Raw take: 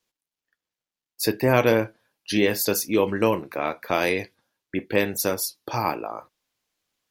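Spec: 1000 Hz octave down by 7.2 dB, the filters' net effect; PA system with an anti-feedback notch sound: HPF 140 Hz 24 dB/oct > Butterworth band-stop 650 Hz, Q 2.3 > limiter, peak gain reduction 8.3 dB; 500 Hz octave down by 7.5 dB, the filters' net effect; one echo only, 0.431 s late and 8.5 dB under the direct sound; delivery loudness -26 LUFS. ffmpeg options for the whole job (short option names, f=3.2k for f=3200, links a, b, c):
-af "highpass=f=140:w=0.5412,highpass=f=140:w=1.3066,asuperstop=centerf=650:order=8:qfactor=2.3,equalizer=f=500:t=o:g=-6,equalizer=f=1k:t=o:g=-5.5,aecho=1:1:431:0.376,volume=5dB,alimiter=limit=-14.5dB:level=0:latency=1"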